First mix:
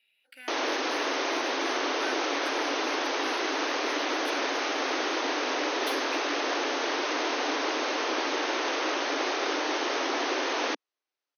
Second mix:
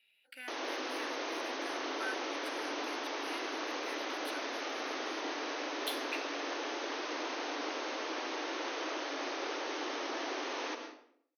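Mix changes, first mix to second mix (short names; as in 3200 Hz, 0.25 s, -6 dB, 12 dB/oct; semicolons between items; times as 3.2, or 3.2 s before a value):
background -12.0 dB; reverb: on, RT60 0.65 s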